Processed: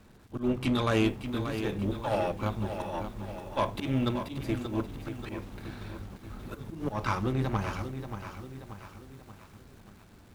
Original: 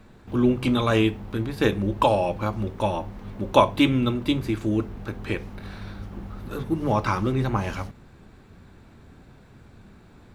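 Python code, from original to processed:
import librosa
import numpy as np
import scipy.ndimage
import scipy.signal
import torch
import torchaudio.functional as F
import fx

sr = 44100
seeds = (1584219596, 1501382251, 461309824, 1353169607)

y = fx.auto_swell(x, sr, attack_ms=136.0)
y = fx.dmg_crackle(y, sr, seeds[0], per_s=450.0, level_db=-48.0)
y = fx.cheby_harmonics(y, sr, harmonics=(6,), levels_db=(-21,), full_scale_db=-9.5)
y = fx.echo_crushed(y, sr, ms=582, feedback_pct=55, bits=8, wet_db=-9)
y = y * 10.0 ** (-5.5 / 20.0)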